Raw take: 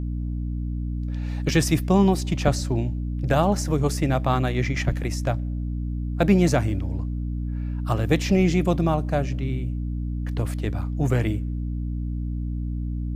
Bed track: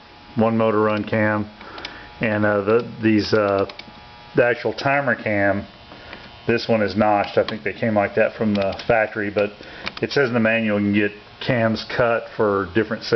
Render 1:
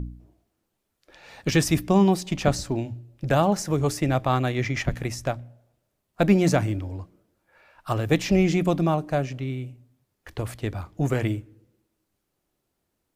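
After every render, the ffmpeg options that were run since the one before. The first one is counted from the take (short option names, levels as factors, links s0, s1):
-af "bandreject=f=60:t=h:w=4,bandreject=f=120:t=h:w=4,bandreject=f=180:t=h:w=4,bandreject=f=240:t=h:w=4,bandreject=f=300:t=h:w=4"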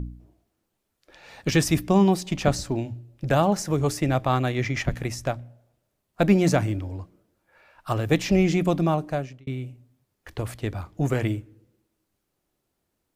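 -filter_complex "[0:a]asplit=2[s0][s1];[s0]atrim=end=9.47,asetpts=PTS-STARTPTS,afade=t=out:st=9.04:d=0.43[s2];[s1]atrim=start=9.47,asetpts=PTS-STARTPTS,afade=t=in:d=0.004:c=hsin[s3];[s2][s3]concat=n=2:v=0:a=1"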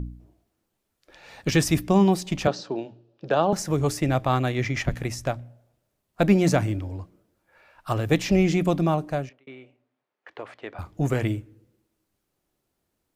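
-filter_complex "[0:a]asettb=1/sr,asplit=3[s0][s1][s2];[s0]atrim=end=2.474[s3];[s1]atrim=start=2.47:end=3.53,asetpts=PTS-STARTPTS,afade=t=in:d=0.004:c=qsin,afade=t=out:st=1.056:d=0.004:c=qsin,highpass=f=190:w=0.5412,highpass=f=190:w=1.3066,equalizer=f=250:t=q:w=4:g=-9,equalizer=f=450:t=q:w=4:g=4,equalizer=f=2100:t=q:w=4:g=-10,lowpass=f=4900:w=0.5412,lowpass=f=4900:w=1.3066[s4];[s2]atrim=start=3.526[s5];[s3][s4]acrossfade=d=0.004:c1=hsin:c2=qsin[s6];[s6][s5]acrossfade=d=0.004:c1=qsin:c2=hsin,asettb=1/sr,asplit=3[s7][s8][s9];[s7]atrim=end=9.294[s10];[s8]atrim=start=9.29:end=10.79,asetpts=PTS-STARTPTS,afade=t=in:d=0.004:c=qsin,afade=t=out:st=1.496:d=0.004:c=qsin,highpass=500,lowpass=2500[s11];[s9]atrim=start=10.786[s12];[s10][s11]acrossfade=d=0.004:c1=hsin:c2=qsin[s13];[s13][s12]acrossfade=d=0.004:c1=qsin:c2=hsin"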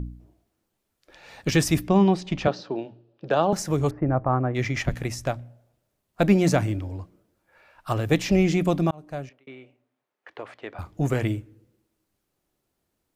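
-filter_complex "[0:a]asettb=1/sr,asplit=3[s0][s1][s2];[s0]atrim=end=1.884[s3];[s1]atrim=start=1.88:end=3.3,asetpts=PTS-STARTPTS,afade=t=in:d=0.004:c=qsin,afade=t=out:st=1.416:d=0.004:c=qsin,lowpass=4300[s4];[s2]atrim=start=3.296[s5];[s3][s4]acrossfade=d=0.004:c1=hsin:c2=qsin[s6];[s6][s5]acrossfade=d=0.004:c1=qsin:c2=hsin,asplit=3[s7][s8][s9];[s7]afade=t=out:st=3.89:d=0.02[s10];[s8]lowpass=f=1400:w=0.5412,lowpass=f=1400:w=1.3066,afade=t=in:st=3.89:d=0.02,afade=t=out:st=4.54:d=0.02[s11];[s9]afade=t=in:st=4.54:d=0.02[s12];[s10][s11][s12]amix=inputs=3:normalize=0,asplit=2[s13][s14];[s13]atrim=end=8.91,asetpts=PTS-STARTPTS,afade=t=out:st=8.906:d=0.004:c=hsin[s15];[s14]atrim=start=8.91,asetpts=PTS-STARTPTS,afade=t=in:d=0.49[s16];[s15][s16]concat=n=2:v=0:a=1"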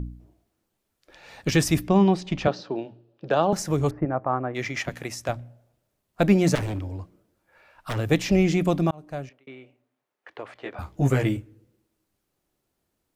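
-filter_complex "[0:a]asettb=1/sr,asplit=3[s0][s1][s2];[s0]atrim=end=4.054[s3];[s1]atrim=start=4.05:end=5.29,asetpts=PTS-STARTPTS,afade=t=in:d=0.004:c=qsin,afade=t=out:st=1.236:d=0.004:c=qsin,highpass=f=350:p=1[s4];[s2]atrim=start=5.286[s5];[s3][s4]acrossfade=d=0.004:c1=hsin:c2=qsin[s6];[s6][s5]acrossfade=d=0.004:c1=qsin:c2=hsin,asettb=1/sr,asplit=3[s7][s8][s9];[s7]atrim=end=6.554[s10];[s8]atrim=start=6.55:end=7.97,asetpts=PTS-STARTPTS,afade=t=in:d=0.004:c=qsin,afade=t=out:st=1.416:d=0.004:c=qsin,aeval=exprs='0.0708*(abs(mod(val(0)/0.0708+3,4)-2)-1)':c=same[s11];[s9]atrim=start=7.966[s12];[s10][s11]acrossfade=d=0.004:c1=hsin:c2=qsin[s13];[s13][s12]acrossfade=d=0.004:c1=qsin:c2=hsin,asettb=1/sr,asplit=3[s14][s15][s16];[s14]atrim=end=10.544[s17];[s15]atrim=start=10.54:end=11.37,asetpts=PTS-STARTPTS,afade=t=in:d=0.004:c=qsin,afade=t=out:st=0.826:d=0.004:c=qsin,asplit=2[s18][s19];[s19]adelay=15,volume=0.75[s20];[s18][s20]amix=inputs=2:normalize=0,atrim=end_sample=36603[s21];[s16]atrim=start=11.366[s22];[s17][s21]acrossfade=d=0.004:c1=hsin:c2=qsin[s23];[s23][s22]acrossfade=d=0.004:c1=qsin:c2=hsin"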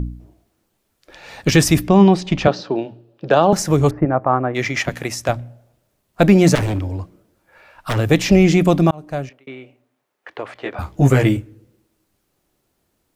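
-af "volume=2.66,alimiter=limit=0.794:level=0:latency=1"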